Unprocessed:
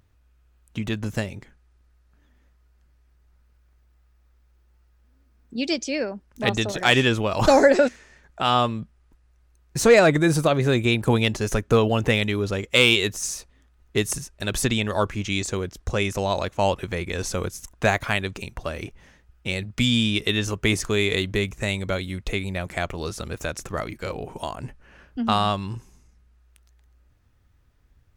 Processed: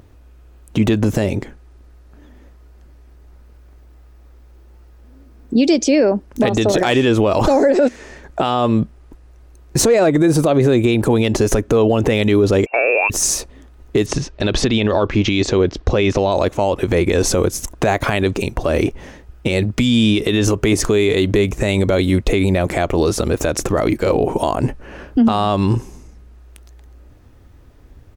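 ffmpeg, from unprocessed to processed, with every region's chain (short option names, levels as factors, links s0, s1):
-filter_complex "[0:a]asettb=1/sr,asplit=3[s0][s1][s2];[s0]atrim=end=12.664[s3];[s1]atrim=start=12.66:end=13.1,asetpts=PTS-STARTPTS,afade=t=in:d=0.004:c=qsin,afade=t=out:st=0.436:d=0.004:c=qsin,lowpass=f=2400:t=q:w=0.5098,lowpass=f=2400:t=q:w=0.6013,lowpass=f=2400:t=q:w=0.9,lowpass=f=2400:t=q:w=2.563,afreqshift=-2800,highpass=f=460:w=0.5412,highpass=f=460:w=1.3066[s4];[s2]atrim=start=13.096[s5];[s3][s4]acrossfade=d=0.004:c1=hsin:c2=qsin[s6];[s6][s5]acrossfade=d=0.004:c1=qsin:c2=hsin,asettb=1/sr,asplit=3[s7][s8][s9];[s7]atrim=end=14.064[s10];[s8]atrim=start=14.06:end=16.32,asetpts=PTS-STARTPTS,afade=t=in:d=0.004:c=qsin,afade=t=out:st=2.256:d=0.004:c=qsin,lowpass=f=4400:w=0.5412,lowpass=f=4400:w=1.3066,aemphasis=mode=production:type=50fm[s11];[s9]atrim=start=16.316[s12];[s10][s11]acrossfade=d=0.004:c1=hsin:c2=qsin[s13];[s13][s12]acrossfade=d=0.004:c1=qsin:c2=hsin,firequalizer=gain_entry='entry(180,0);entry(290,7);entry(1400,-3)':delay=0.05:min_phase=1,acompressor=threshold=0.0891:ratio=12,alimiter=level_in=10.6:limit=0.891:release=50:level=0:latency=1,volume=0.562"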